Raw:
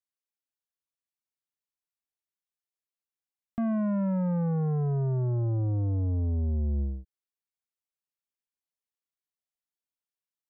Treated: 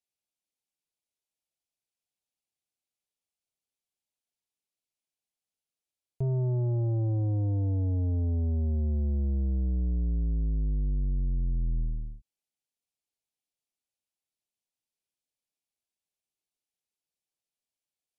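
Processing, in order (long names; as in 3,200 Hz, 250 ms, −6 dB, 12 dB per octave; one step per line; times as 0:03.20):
wrong playback speed 78 rpm record played at 45 rpm
flat-topped bell 1,400 Hz −11.5 dB 1.1 octaves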